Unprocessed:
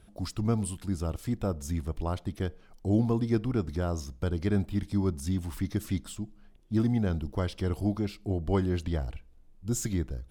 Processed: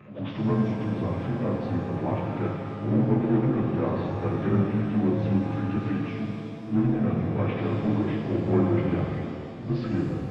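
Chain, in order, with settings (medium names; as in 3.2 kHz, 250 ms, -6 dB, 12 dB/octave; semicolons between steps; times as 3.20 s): frequency axis rescaled in octaves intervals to 88%; high-pass 110 Hz 24 dB/octave; hum notches 60/120/180/240/300 Hz; power-law waveshaper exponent 0.7; low-pass 2.5 kHz 24 dB/octave; pre-echo 100 ms -15 dB; pitch-shifted reverb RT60 2.2 s, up +7 st, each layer -8 dB, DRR 0 dB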